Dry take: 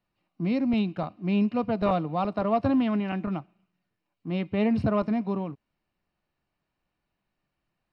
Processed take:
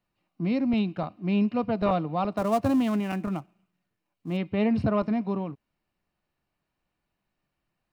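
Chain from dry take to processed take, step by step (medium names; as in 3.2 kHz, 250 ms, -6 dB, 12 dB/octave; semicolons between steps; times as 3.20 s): 2.37–4.37 s: dead-time distortion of 0.074 ms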